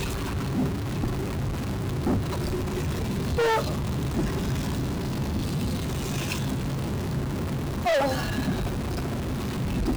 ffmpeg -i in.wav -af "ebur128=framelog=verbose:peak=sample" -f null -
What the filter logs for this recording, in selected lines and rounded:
Integrated loudness:
  I:         -28.0 LUFS
  Threshold: -38.0 LUFS
Loudness range:
  LRA:         1.5 LU
  Threshold: -47.9 LUFS
  LRA low:   -28.8 LUFS
  LRA high:  -27.3 LUFS
Sample peak:
  Peak:      -20.7 dBFS